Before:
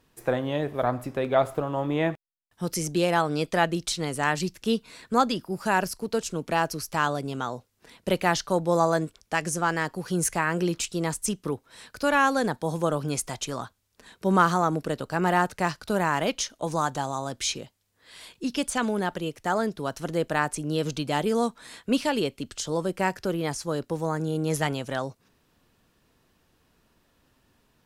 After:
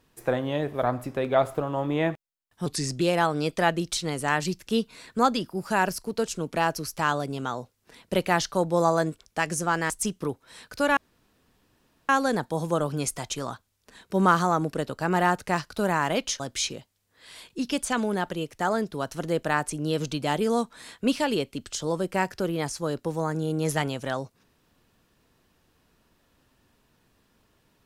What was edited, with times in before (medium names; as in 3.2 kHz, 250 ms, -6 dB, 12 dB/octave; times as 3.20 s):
2.66–2.96 s: speed 86%
9.85–11.13 s: delete
12.20 s: insert room tone 1.12 s
16.51–17.25 s: delete